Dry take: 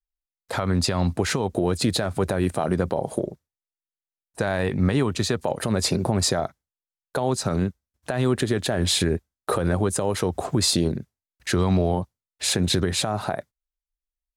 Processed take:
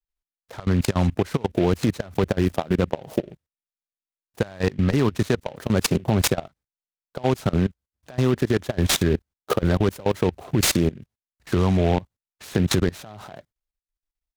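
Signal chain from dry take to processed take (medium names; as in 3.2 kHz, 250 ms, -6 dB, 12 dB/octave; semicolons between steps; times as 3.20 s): bass shelf 360 Hz +2.5 dB; level held to a coarse grid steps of 22 dB; delay time shaken by noise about 2.1 kHz, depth 0.041 ms; trim +3.5 dB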